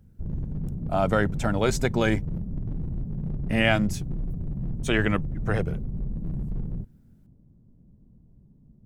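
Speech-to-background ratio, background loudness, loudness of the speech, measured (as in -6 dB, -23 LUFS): 7.5 dB, -33.5 LUFS, -26.0 LUFS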